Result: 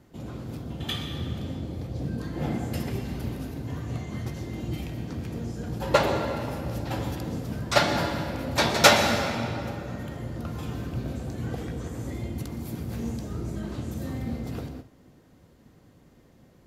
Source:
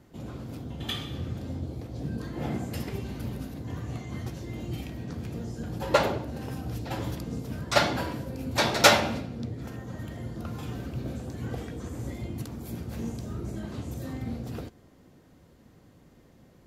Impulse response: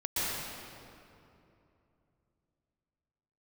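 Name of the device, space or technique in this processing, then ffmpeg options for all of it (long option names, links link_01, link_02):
keyed gated reverb: -filter_complex "[0:a]asplit=3[link_01][link_02][link_03];[1:a]atrim=start_sample=2205[link_04];[link_02][link_04]afir=irnorm=-1:irlink=0[link_05];[link_03]apad=whole_len=734931[link_06];[link_05][link_06]sidechaingate=range=-33dB:threshold=-52dB:ratio=16:detection=peak,volume=-13.5dB[link_07];[link_01][link_07]amix=inputs=2:normalize=0"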